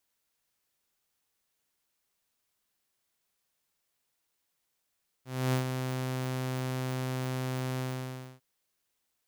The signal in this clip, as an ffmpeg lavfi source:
ffmpeg -f lavfi -i "aevalsrc='0.0794*(2*mod(129*t,1)-1)':duration=3.151:sample_rate=44100,afade=type=in:duration=0.279,afade=type=out:start_time=0.279:duration=0.111:silence=0.473,afade=type=out:start_time=2.55:duration=0.601" out.wav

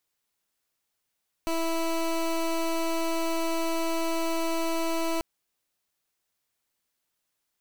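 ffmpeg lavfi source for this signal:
ffmpeg -f lavfi -i "aevalsrc='0.0447*(2*lt(mod(329*t,1),0.19)-1)':duration=3.74:sample_rate=44100" out.wav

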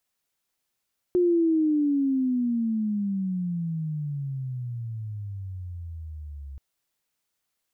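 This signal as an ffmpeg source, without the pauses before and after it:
ffmpeg -f lavfi -i "aevalsrc='pow(10,(-17.5-18.5*t/5.43)/20)*sin(2*PI*361*5.43/(-29*log(2)/12)*(exp(-29*log(2)/12*t/5.43)-1))':duration=5.43:sample_rate=44100" out.wav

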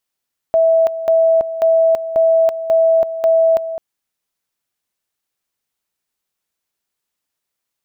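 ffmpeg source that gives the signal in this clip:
ffmpeg -f lavfi -i "aevalsrc='pow(10,(-9-12*gte(mod(t,0.54),0.33))/20)*sin(2*PI*654*t)':duration=3.24:sample_rate=44100" out.wav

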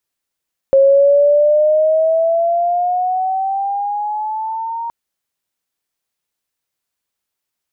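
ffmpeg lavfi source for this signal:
ffmpeg -f lavfi -i "aevalsrc='pow(10,(-6-14.5*t/4.17)/20)*sin(2*PI*540*4.17/(9.5*log(2)/12)*(exp(9.5*log(2)/12*t/4.17)-1))':duration=4.17:sample_rate=44100" out.wav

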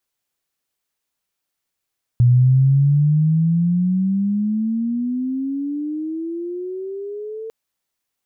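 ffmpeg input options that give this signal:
ffmpeg -f lavfi -i "aevalsrc='pow(10,(-9-18.5*t/5.3)/20)*sin(2*PI*120*5.3/log(450/120)*(exp(log(450/120)*t/5.3)-1))':duration=5.3:sample_rate=44100" out.wav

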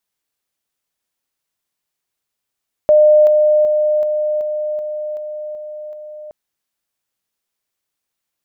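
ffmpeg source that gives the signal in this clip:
ffmpeg -f lavfi -i "aevalsrc='pow(10,(-6-3*floor(t/0.38))/20)*sin(2*PI*606*t)':duration=3.42:sample_rate=44100" out.wav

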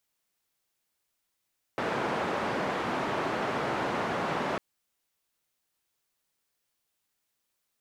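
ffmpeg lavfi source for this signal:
ffmpeg -f lavfi -i "anoisesrc=color=white:duration=2.8:sample_rate=44100:seed=1,highpass=frequency=150,lowpass=frequency=1100,volume=-12.5dB" out.wav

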